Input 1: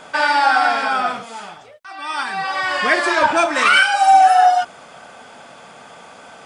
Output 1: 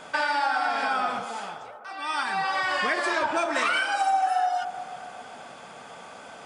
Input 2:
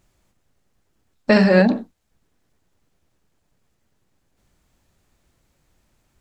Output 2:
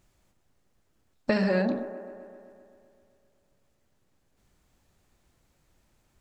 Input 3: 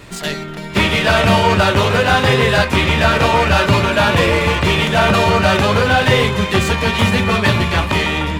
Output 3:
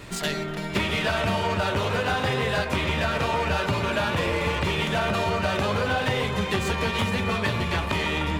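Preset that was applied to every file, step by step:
compression 6:1, threshold -19 dBFS; on a send: feedback echo behind a band-pass 129 ms, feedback 70%, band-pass 640 Hz, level -9.5 dB; on the sum: peak normalisation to -12 dBFS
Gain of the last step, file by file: -3.5 dB, -3.0 dB, -3.0 dB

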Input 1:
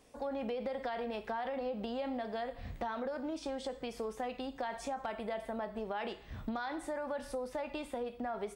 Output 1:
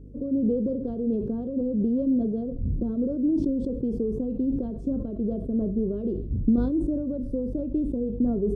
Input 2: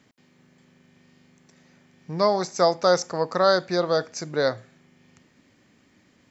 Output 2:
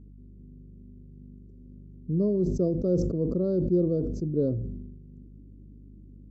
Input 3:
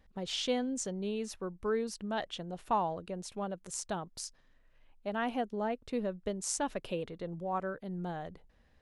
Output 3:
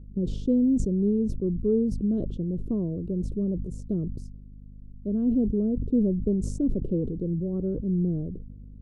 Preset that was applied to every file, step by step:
inverse Chebyshev low-pass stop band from 760 Hz, stop band 40 dB; hum 50 Hz, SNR 19 dB; decay stretcher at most 42 dB/s; normalise loudness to -27 LUFS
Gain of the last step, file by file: +17.0 dB, +5.0 dB, +14.0 dB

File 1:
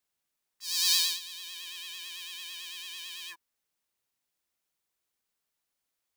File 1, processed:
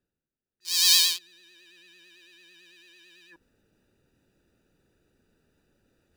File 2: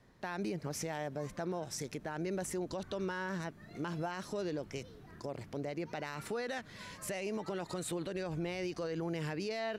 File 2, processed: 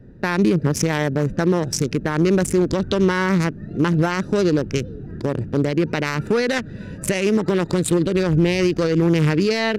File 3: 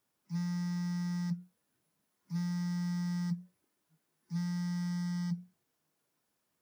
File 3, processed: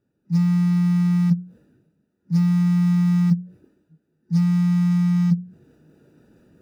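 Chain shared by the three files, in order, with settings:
local Wiener filter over 41 samples; peaking EQ 710 Hz -9 dB 0.67 oct; reverse; upward compressor, threshold -55 dBFS; reverse; normalise loudness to -20 LUFS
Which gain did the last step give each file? +6.5 dB, +22.5 dB, +17.0 dB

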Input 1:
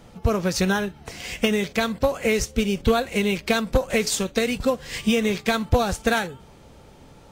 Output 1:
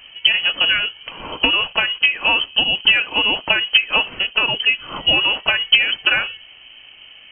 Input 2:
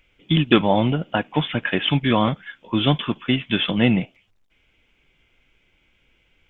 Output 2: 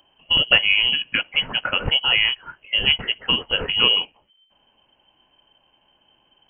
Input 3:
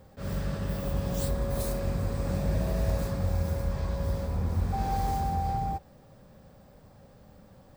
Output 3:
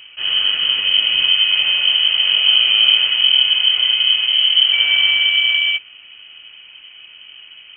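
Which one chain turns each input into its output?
frequency inversion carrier 3.1 kHz; peak normalisation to -1.5 dBFS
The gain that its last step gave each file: +4.5 dB, -0.5 dB, +13.0 dB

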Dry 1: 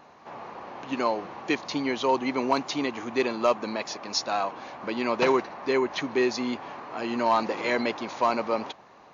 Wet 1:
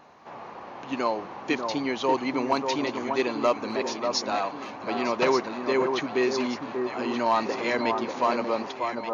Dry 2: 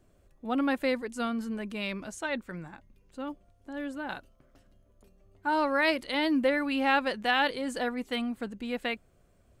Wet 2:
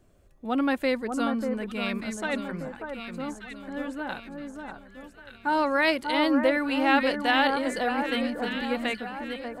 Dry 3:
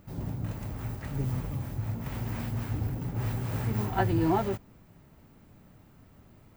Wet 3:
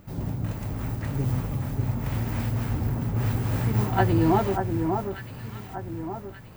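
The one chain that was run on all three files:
echo whose repeats swap between lows and highs 590 ms, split 1.5 kHz, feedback 64%, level -5 dB; normalise loudness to -27 LUFS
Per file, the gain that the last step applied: -0.5 dB, +2.5 dB, +4.5 dB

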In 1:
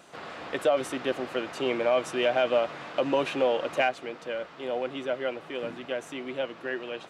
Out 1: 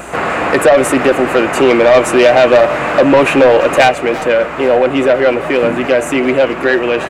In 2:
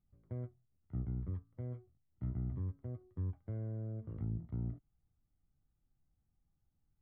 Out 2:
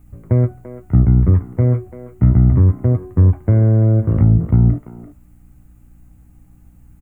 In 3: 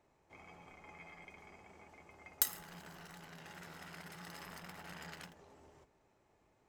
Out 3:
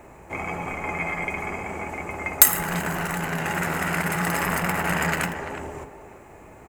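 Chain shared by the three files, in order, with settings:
high-order bell 4.3 kHz -11 dB 1.1 oct; de-hum 148 Hz, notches 39; in parallel at +0.5 dB: compression, threshold -37 dBFS; on the sum: hum 60 Hz, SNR 34 dB; saturation -22.5 dBFS; speakerphone echo 340 ms, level -11 dB; peak normalisation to -2 dBFS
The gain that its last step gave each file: +19.5 dB, +23.0 dB, +20.5 dB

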